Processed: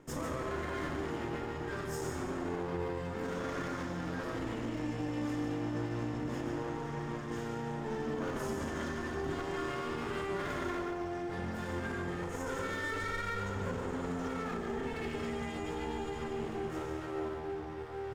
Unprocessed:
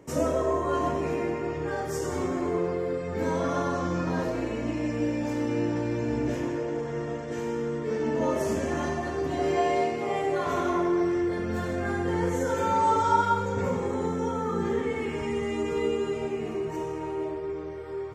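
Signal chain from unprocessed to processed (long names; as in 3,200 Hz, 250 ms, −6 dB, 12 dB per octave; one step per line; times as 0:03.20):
lower of the sound and its delayed copy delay 0.6 ms
reversed playback
upward compression, threshold −33 dBFS
reversed playback
brickwall limiter −24 dBFS, peak gain reduction 10.5 dB
single-tap delay 145 ms −8 dB
level −5 dB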